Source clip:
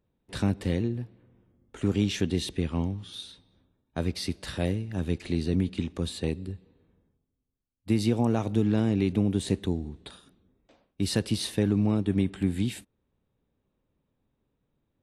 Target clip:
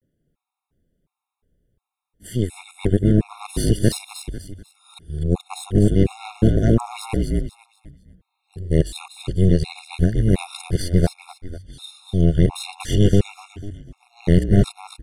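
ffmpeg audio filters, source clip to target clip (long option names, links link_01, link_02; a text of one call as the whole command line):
ffmpeg -i in.wav -filter_complex "[0:a]areverse,asubboost=boost=8.5:cutoff=71,aeval=exprs='0.266*(cos(1*acos(clip(val(0)/0.266,-1,1)))-cos(1*PI/2))+0.106*(cos(4*acos(clip(val(0)/0.266,-1,1)))-cos(4*PI/2))':channel_layout=same,equalizer=frequency=160:width_type=o:width=0.67:gain=8,equalizer=frequency=400:width_type=o:width=0.67:gain=4,equalizer=frequency=10000:width_type=o:width=0.67:gain=8,asplit=2[link_01][link_02];[link_02]asplit=4[link_03][link_04][link_05][link_06];[link_03]adelay=247,afreqshift=-47,volume=-6dB[link_07];[link_04]adelay=494,afreqshift=-94,volume=-15.6dB[link_08];[link_05]adelay=741,afreqshift=-141,volume=-25.3dB[link_09];[link_06]adelay=988,afreqshift=-188,volume=-34.9dB[link_10];[link_07][link_08][link_09][link_10]amix=inputs=4:normalize=0[link_11];[link_01][link_11]amix=inputs=2:normalize=0,afftfilt=real='re*gt(sin(2*PI*1.4*pts/sr)*(1-2*mod(floor(b*sr/1024/710),2)),0)':imag='im*gt(sin(2*PI*1.4*pts/sr)*(1-2*mod(floor(b*sr/1024/710),2)),0)':win_size=1024:overlap=0.75,volume=2dB" out.wav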